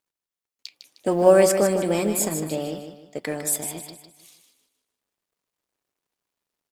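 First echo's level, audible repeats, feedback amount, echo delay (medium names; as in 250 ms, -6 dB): -8.0 dB, 4, 36%, 154 ms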